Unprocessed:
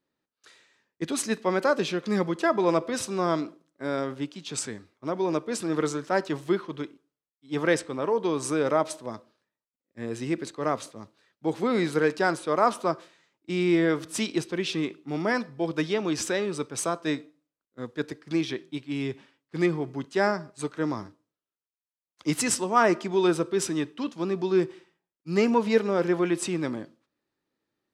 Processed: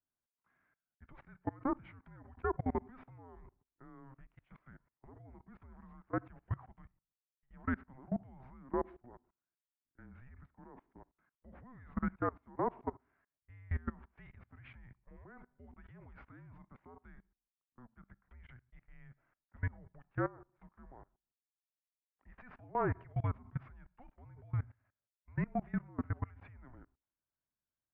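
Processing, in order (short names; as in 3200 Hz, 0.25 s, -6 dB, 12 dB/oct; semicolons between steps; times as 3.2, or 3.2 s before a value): mistuned SSB -260 Hz 310–2200 Hz; level quantiser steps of 23 dB; gain -8.5 dB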